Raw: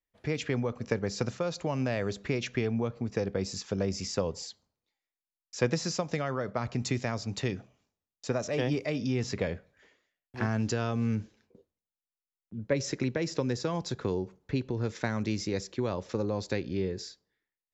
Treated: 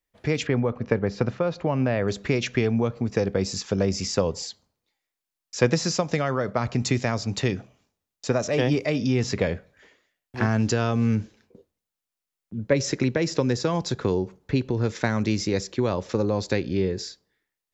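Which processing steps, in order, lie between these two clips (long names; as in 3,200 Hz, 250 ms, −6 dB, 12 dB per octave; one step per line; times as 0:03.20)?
0:00.47–0:02.08: Bessel low-pass filter 2,200 Hz, order 2
level +7 dB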